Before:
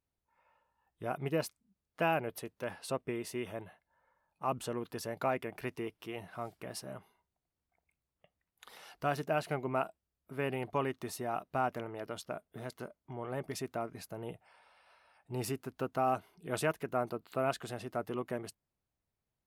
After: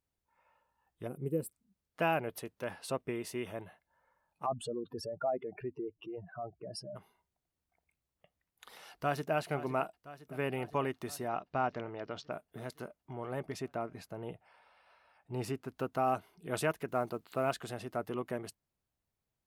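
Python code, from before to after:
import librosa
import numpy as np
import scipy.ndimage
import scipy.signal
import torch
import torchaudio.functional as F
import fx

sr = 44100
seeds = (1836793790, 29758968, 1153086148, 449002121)

y = fx.spec_box(x, sr, start_s=1.07, length_s=0.46, low_hz=550.0, high_hz=7400.0, gain_db=-20)
y = fx.spec_expand(y, sr, power=2.8, at=(4.45, 6.95), fade=0.02)
y = fx.echo_throw(y, sr, start_s=8.91, length_s=0.43, ms=510, feedback_pct=70, wet_db=-14.0)
y = fx.steep_lowpass(y, sr, hz=6000.0, slope=36, at=(11.28, 12.32))
y = fx.lowpass(y, sr, hz=4000.0, slope=6, at=(13.43, 15.68))
y = fx.quant_companded(y, sr, bits=8, at=(16.88, 17.57))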